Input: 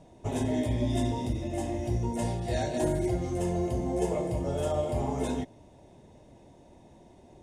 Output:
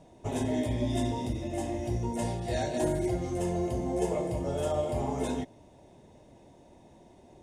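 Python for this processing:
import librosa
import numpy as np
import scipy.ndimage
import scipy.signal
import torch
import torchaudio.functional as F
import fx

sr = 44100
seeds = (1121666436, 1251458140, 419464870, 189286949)

y = fx.low_shelf(x, sr, hz=160.0, db=-3.5)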